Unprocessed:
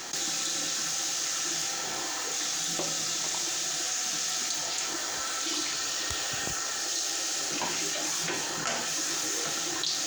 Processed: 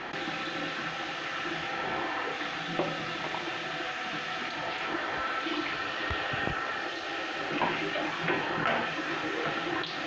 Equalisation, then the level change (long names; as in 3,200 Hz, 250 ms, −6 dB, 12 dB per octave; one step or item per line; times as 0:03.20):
low-pass filter 2,700 Hz 24 dB per octave
+5.5 dB